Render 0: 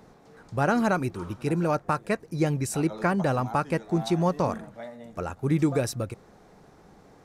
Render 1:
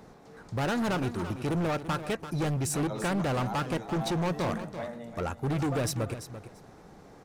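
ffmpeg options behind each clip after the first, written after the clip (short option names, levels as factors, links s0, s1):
-af "asoftclip=type=hard:threshold=0.0398,aecho=1:1:339|678:0.266|0.0399,volume=1.19"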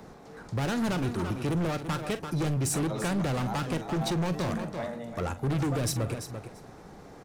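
-filter_complex "[0:a]acrossover=split=270|3000[s0][s1][s2];[s1]acompressor=threshold=0.0251:ratio=6[s3];[s0][s3][s2]amix=inputs=3:normalize=0,asplit=2[s4][s5];[s5]adelay=44,volume=0.211[s6];[s4][s6]amix=inputs=2:normalize=0,asoftclip=type=tanh:threshold=0.0562,volume=1.5"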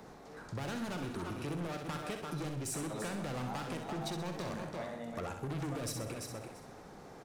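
-af "lowshelf=f=240:g=-5,acompressor=threshold=0.02:ratio=6,aecho=1:1:64|128|192|256|320|384:0.447|0.219|0.107|0.0526|0.0258|0.0126,volume=0.708"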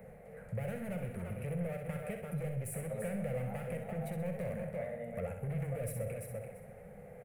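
-af "firequalizer=gain_entry='entry(200,0);entry(300,-26);entry(500,5);entry(980,-19);entry(2100,-1);entry(3600,-25);entry(5600,-28);entry(9900,-2)':delay=0.05:min_phase=1,volume=1.41"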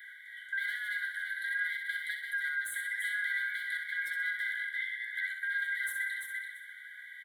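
-af "afftfilt=real='real(if(lt(b,272),68*(eq(floor(b/68),0)*3+eq(floor(b/68),1)*0+eq(floor(b/68),2)*1+eq(floor(b/68),3)*2)+mod(b,68),b),0)':imag='imag(if(lt(b,272),68*(eq(floor(b/68),0)*3+eq(floor(b/68),1)*0+eq(floor(b/68),2)*1+eq(floor(b/68),3)*2)+mod(b,68),b),0)':win_size=2048:overlap=0.75,asuperstop=centerf=2600:order=12:qfactor=3.7,volume=1.41"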